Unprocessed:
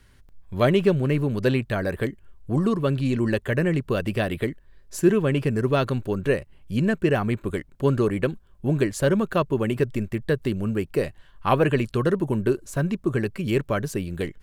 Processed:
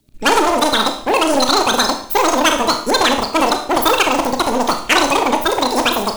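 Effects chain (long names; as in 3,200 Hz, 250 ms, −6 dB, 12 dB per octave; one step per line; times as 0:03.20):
spectral magnitudes quantised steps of 30 dB
wrong playback speed 33 rpm record played at 78 rpm
leveller curve on the samples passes 3
high-shelf EQ 2,100 Hz +8.5 dB
four-comb reverb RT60 0.55 s, combs from 25 ms, DRR 5 dB
level −2.5 dB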